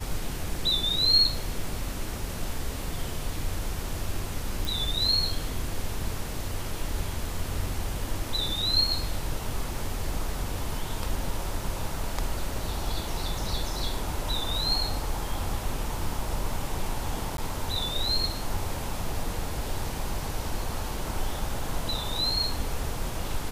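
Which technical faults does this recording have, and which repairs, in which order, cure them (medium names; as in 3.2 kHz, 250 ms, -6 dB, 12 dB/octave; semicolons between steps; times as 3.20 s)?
4.65 s: pop
17.37–17.38 s: dropout 12 ms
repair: de-click; interpolate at 17.37 s, 12 ms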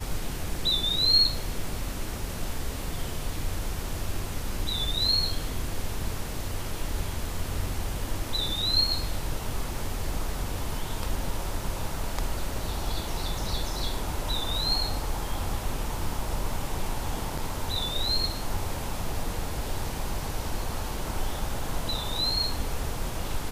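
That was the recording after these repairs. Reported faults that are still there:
nothing left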